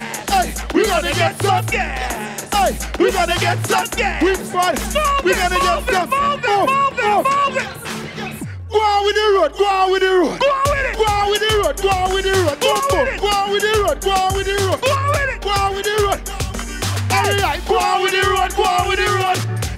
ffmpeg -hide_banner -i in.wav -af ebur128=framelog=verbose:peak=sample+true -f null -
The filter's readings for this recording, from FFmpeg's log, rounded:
Integrated loudness:
  I:         -16.8 LUFS
  Threshold: -26.9 LUFS
Loudness range:
  LRA:         2.1 LU
  Threshold: -36.9 LUFS
  LRA low:   -18.0 LUFS
  LRA high:  -15.8 LUFS
Sample peak:
  Peak:       -5.0 dBFS
True peak:
  Peak:       -5.0 dBFS